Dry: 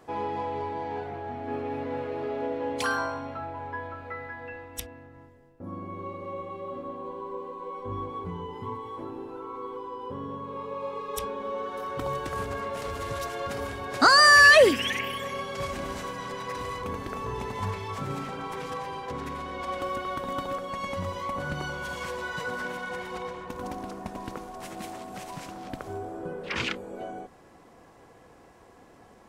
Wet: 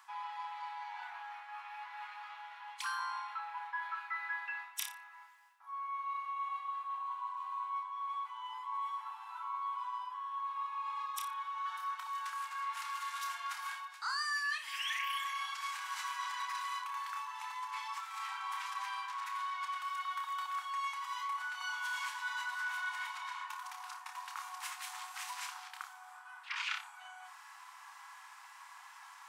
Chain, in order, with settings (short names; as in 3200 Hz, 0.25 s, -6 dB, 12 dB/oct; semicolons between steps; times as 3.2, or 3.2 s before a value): flutter echo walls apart 5.1 m, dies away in 0.25 s; reverse; compressor 20:1, threshold -39 dBFS, peak gain reduction 29.5 dB; reverse; steep high-pass 880 Hz 72 dB/oct; gain +6 dB